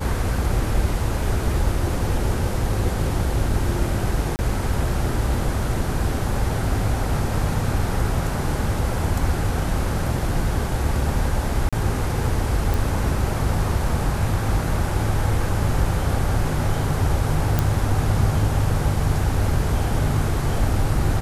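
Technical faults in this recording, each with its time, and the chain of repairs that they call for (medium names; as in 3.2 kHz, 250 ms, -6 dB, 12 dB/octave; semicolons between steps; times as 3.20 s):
4.36–4.39 s: dropout 29 ms
11.69–11.73 s: dropout 36 ms
12.74 s: pop
17.59 s: pop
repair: de-click; interpolate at 4.36 s, 29 ms; interpolate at 11.69 s, 36 ms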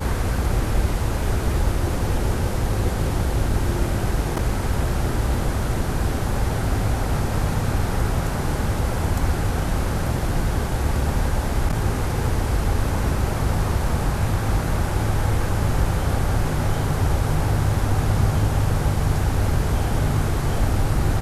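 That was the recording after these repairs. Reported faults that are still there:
nothing left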